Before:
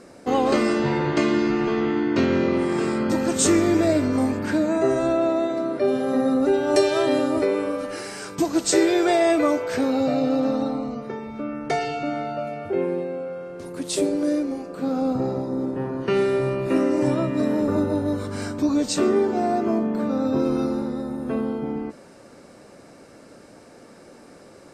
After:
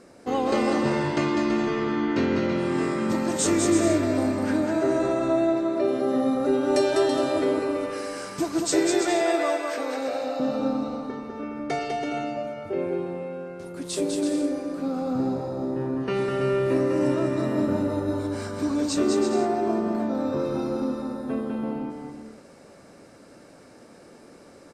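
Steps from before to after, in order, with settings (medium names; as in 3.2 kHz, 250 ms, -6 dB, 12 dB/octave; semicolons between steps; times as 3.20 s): 9.01–10.40 s: high-pass 460 Hz 12 dB/octave; bouncing-ball echo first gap 200 ms, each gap 0.65×, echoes 5; trim -4.5 dB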